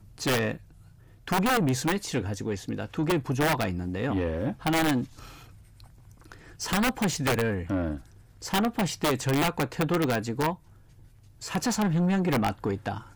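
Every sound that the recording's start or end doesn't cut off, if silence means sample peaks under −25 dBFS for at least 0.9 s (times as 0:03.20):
0:06.64–0:10.51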